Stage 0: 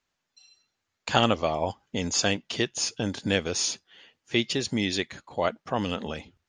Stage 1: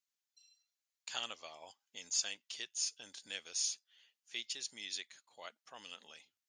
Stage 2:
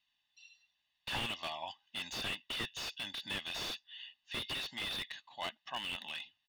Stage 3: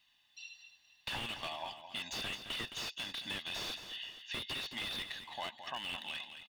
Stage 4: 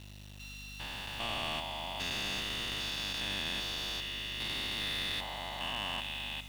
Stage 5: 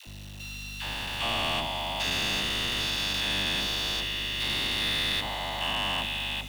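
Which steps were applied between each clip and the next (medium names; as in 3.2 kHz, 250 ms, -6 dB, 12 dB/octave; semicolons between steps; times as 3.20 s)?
differentiator; trim -6 dB
four-pole ladder low-pass 3.7 kHz, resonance 60%; comb 1.1 ms, depth 94%; slew-rate limiter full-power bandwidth 5.2 Hz; trim +18 dB
compression 2.5:1, threshold -53 dBFS, peak gain reduction 13 dB; multi-tap echo 216/474 ms -10/-17 dB; trim +9.5 dB
spectrogram pixelated in time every 400 ms; hum 50 Hz, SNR 11 dB; small samples zeroed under -57.5 dBFS; trim +8 dB
phase dispersion lows, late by 73 ms, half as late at 540 Hz; trim +7.5 dB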